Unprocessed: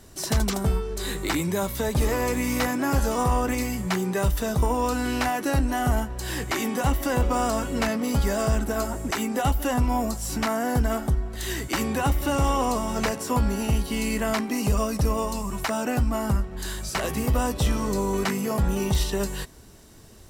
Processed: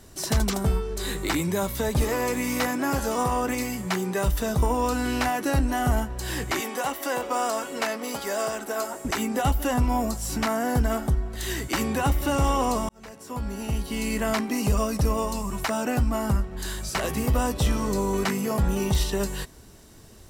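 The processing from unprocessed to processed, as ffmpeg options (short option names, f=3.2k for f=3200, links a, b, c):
-filter_complex "[0:a]asettb=1/sr,asplit=3[a][b][c];[a]atrim=end=2.044[d];[b]atrim=start=2.04:end=4.27,asetpts=PTS-STARTPTS,afade=t=in:d=0.004:c=qsin,afade=t=out:st=2.226:d=0.004:c=qsin,highpass=f=160:p=1[e];[c]atrim=start=4.266[f];[d][e]acrossfade=d=0.004:c1=hsin:c2=qsin[g];[g][f]acrossfade=d=0.004:c1=qsin:c2=hsin,asettb=1/sr,asplit=3[h][i][j];[h]atrim=end=6.604[k];[i]atrim=start=6.6:end=9.05,asetpts=PTS-STARTPTS,afade=t=in:d=0.004:c=qsin,afade=t=out:st=2.446:d=0.004:c=qsin,highpass=410[l];[j]atrim=start=9.046[m];[k][l]acrossfade=d=0.004:c1=hsin:c2=qsin[n];[n][m]acrossfade=d=0.004:c1=qsin:c2=hsin,asplit=2[o][p];[o]atrim=end=12.89,asetpts=PTS-STARTPTS,afade=t=out:st=12.886:d=0.004:c=hsin[q];[p]atrim=start=12.89,asetpts=PTS-STARTPTS,afade=t=in:d=1.38[r];[q][r]concat=n=2:v=0:a=1"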